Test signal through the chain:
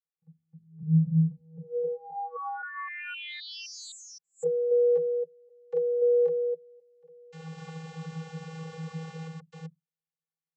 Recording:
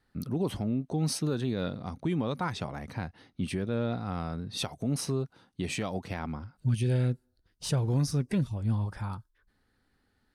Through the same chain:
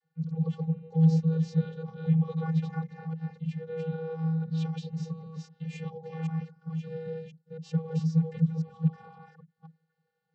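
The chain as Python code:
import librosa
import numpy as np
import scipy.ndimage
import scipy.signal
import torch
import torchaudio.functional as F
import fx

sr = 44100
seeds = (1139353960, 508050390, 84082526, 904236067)

y = fx.reverse_delay(x, sr, ms=261, wet_db=-1)
y = fx.vocoder(y, sr, bands=32, carrier='square', carrier_hz=161.0)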